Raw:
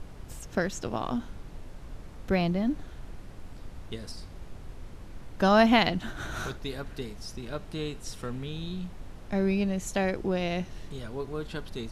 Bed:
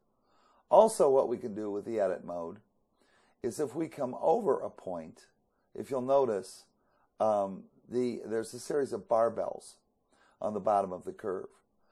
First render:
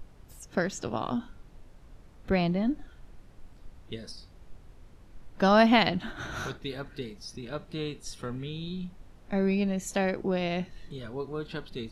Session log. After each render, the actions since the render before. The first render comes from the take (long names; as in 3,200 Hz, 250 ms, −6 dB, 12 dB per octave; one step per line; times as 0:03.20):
noise reduction from a noise print 9 dB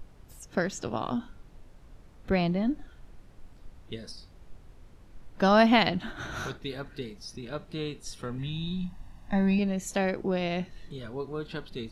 0:08.38–0:09.59: comb filter 1.1 ms, depth 85%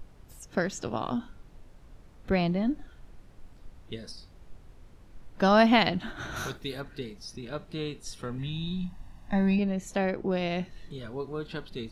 0:06.36–0:06.81: high-shelf EQ 7,900 Hz +12 dB
0:09.56–0:10.31: high-shelf EQ 3,800 Hz −8 dB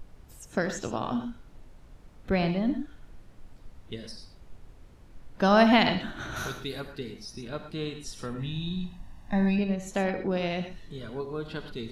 reverb whose tail is shaped and stops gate 140 ms rising, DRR 7.5 dB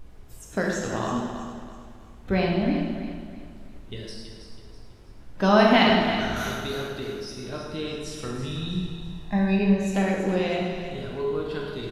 on a send: repeating echo 326 ms, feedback 37%, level −10 dB
on the sum: dense smooth reverb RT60 1.3 s, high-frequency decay 0.85×, DRR −1 dB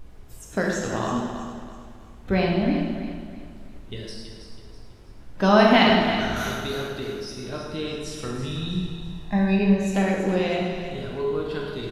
level +1.5 dB